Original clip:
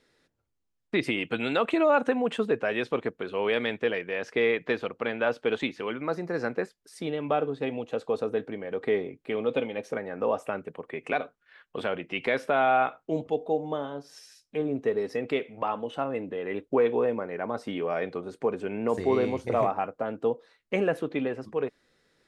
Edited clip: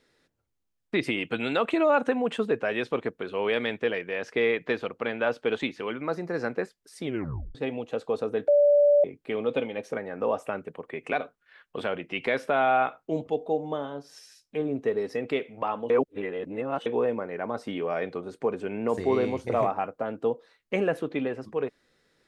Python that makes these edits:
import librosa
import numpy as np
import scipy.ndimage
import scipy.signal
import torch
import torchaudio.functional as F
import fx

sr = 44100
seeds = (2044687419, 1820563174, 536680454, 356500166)

y = fx.edit(x, sr, fx.tape_stop(start_s=7.04, length_s=0.51),
    fx.bleep(start_s=8.48, length_s=0.56, hz=581.0, db=-15.5),
    fx.reverse_span(start_s=15.9, length_s=0.96), tone=tone)